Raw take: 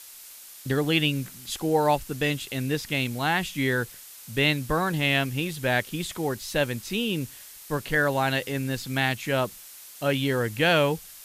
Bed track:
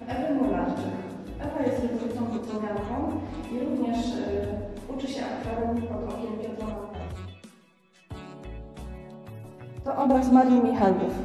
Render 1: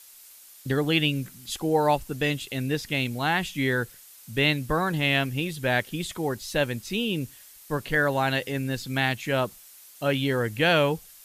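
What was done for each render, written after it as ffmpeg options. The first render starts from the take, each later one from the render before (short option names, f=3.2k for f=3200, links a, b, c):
-af "afftdn=nr=6:nf=-46"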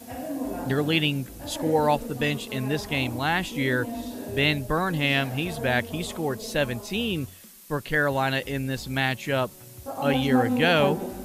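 -filter_complex "[1:a]volume=-6dB[a];[0:a][a]amix=inputs=2:normalize=0"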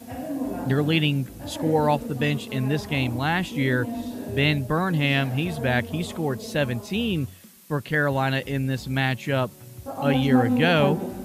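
-af "highpass=77,bass=f=250:g=6,treble=f=4k:g=-3"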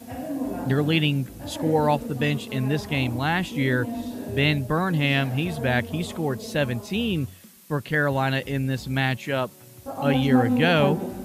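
-filter_complex "[0:a]asettb=1/sr,asplit=3[a][b][c];[a]atrim=end=9.174[d];[b]atrim=start=9.17:end=9.86,asetpts=PTS-STARTPTS,afade=t=in:d=0.004:c=qsin,afade=t=out:st=0.686:d=0.004:c=qsin,highpass=f=230:p=1[e];[c]atrim=start=9.856[f];[d][e]acrossfade=d=0.004:c1=hsin:c2=qsin[g];[g][f]acrossfade=d=0.004:c1=qsin:c2=hsin"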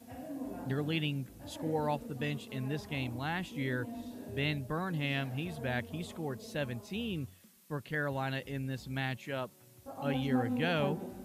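-af "volume=-12dB"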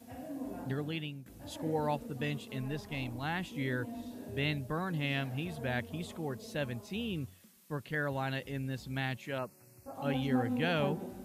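-filter_complex "[0:a]asettb=1/sr,asplit=3[a][b][c];[a]atrim=end=2.614[d];[b]atrim=start=2.61:end=3.23,asetpts=PTS-STARTPTS,afade=t=in:d=0.004:c=qsin,afade=t=out:st=0.616:d=0.004:c=qsin,aeval=exprs='if(lt(val(0),0),0.708*val(0),val(0))':c=same[e];[c]atrim=start=3.226[f];[d][e]acrossfade=d=0.004:c1=hsin:c2=qsin[g];[g][f]acrossfade=d=0.004:c1=qsin:c2=hsin,asettb=1/sr,asplit=3[h][i][j];[h]atrim=end=9.384[k];[i]atrim=start=9.38:end=9.94,asetpts=PTS-STARTPTS,afade=t=in:d=0.004:c=qsin,afade=t=out:st=0.556:d=0.004:c=qsin,asuperstop=centerf=3400:order=8:qfactor=2.3[l];[j]atrim=start=9.936[m];[k][l]acrossfade=d=0.004:c1=hsin:c2=qsin[n];[n][m]acrossfade=d=0.004:c1=qsin:c2=hsin,asplit=2[o][p];[o]atrim=end=1.26,asetpts=PTS-STARTPTS,afade=t=out:st=0.59:d=0.67:silence=0.237137[q];[p]atrim=start=1.26,asetpts=PTS-STARTPTS,afade=t=in:d=0.004:c=hsin:silence=0.237137[r];[q][r]concat=n=2:v=0:a=1"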